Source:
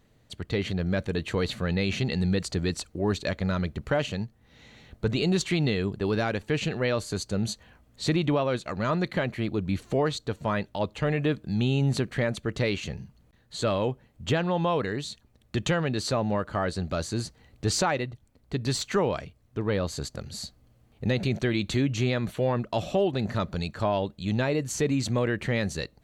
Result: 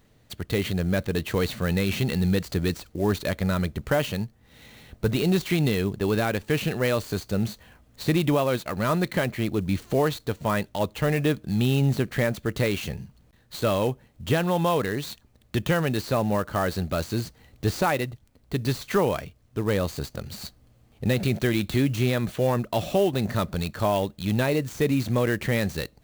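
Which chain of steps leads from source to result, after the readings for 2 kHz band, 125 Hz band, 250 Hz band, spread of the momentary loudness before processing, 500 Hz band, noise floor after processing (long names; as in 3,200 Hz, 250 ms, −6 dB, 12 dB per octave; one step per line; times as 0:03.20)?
+2.5 dB, +2.5 dB, +2.5 dB, 8 LU, +2.5 dB, −60 dBFS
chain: high-shelf EQ 4,500 Hz +5 dB
de-essing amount 85%
converter with an unsteady clock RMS 0.022 ms
level +2.5 dB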